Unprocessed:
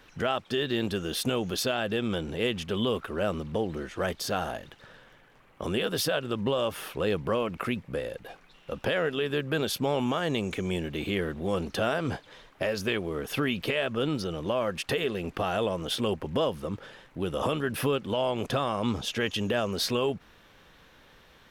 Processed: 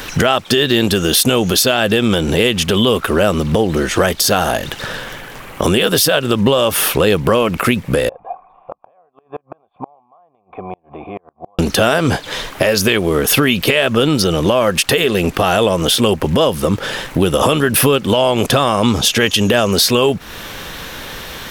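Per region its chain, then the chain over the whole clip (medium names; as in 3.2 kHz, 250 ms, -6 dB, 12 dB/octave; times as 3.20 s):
8.09–11.59 s: cascade formant filter a + inverted gate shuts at -40 dBFS, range -35 dB
whole clip: treble shelf 5.2 kHz +11 dB; compression 3:1, threshold -39 dBFS; loudness maximiser +26.5 dB; trim -1 dB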